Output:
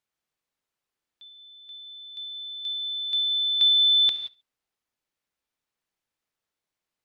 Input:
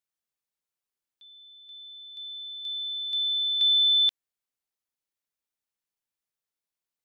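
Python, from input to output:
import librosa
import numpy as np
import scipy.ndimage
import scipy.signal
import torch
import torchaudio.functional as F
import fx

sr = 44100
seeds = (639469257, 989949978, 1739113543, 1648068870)

y = fx.lowpass(x, sr, hz=3500.0, slope=6)
y = fx.echo_feedback(y, sr, ms=70, feedback_pct=30, wet_db=-22.0)
y = fx.rev_gated(y, sr, seeds[0], gate_ms=200, shape='flat', drr_db=9.0)
y = F.gain(torch.from_numpy(y), 7.5).numpy()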